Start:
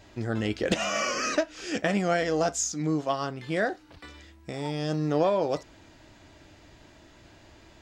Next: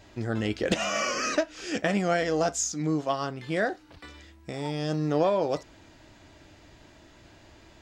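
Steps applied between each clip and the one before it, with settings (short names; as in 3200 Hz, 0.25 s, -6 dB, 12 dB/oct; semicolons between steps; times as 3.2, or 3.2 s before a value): nothing audible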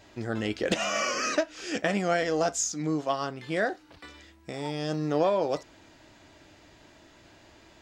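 low shelf 140 Hz -7.5 dB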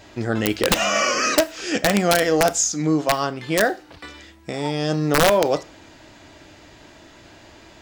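wrapped overs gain 16 dB; on a send at -18 dB: reverb RT60 0.40 s, pre-delay 25 ms; on the sum: gain +8.5 dB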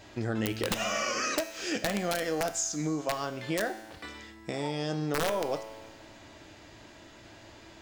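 compressor 3:1, threshold -24 dBFS, peak gain reduction 9.5 dB; resonator 110 Hz, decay 1.6 s, mix 70%; gain +4.5 dB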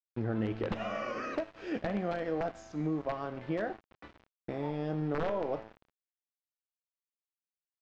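sample gate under -38 dBFS; tape spacing loss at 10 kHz 44 dB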